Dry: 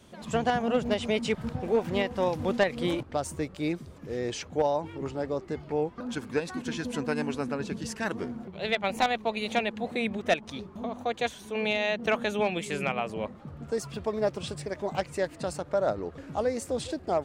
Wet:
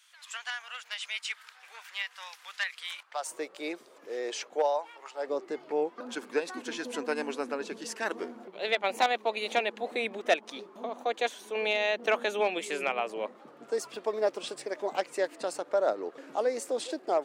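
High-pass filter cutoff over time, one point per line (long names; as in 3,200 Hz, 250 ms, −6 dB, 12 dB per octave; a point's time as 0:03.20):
high-pass filter 24 dB per octave
0:02.97 1,400 Hz
0:03.38 400 Hz
0:04.54 400 Hz
0:05.09 830 Hz
0:05.31 310 Hz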